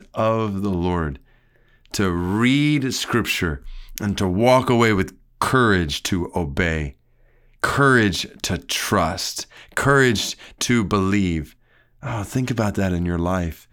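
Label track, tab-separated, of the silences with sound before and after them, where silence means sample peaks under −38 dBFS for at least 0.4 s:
1.170000	1.860000	silence
6.910000	7.640000	silence
11.500000	12.030000	silence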